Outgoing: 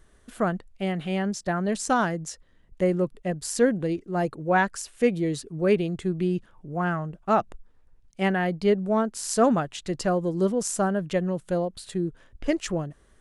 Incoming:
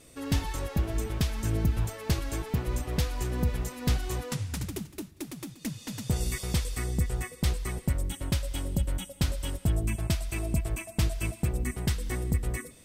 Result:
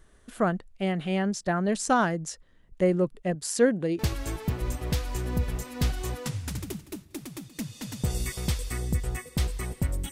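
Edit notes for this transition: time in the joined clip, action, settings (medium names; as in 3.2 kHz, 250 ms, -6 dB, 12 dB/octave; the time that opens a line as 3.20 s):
outgoing
3.35–3.99 s: high-pass 140 Hz 6 dB/octave
3.99 s: go over to incoming from 2.05 s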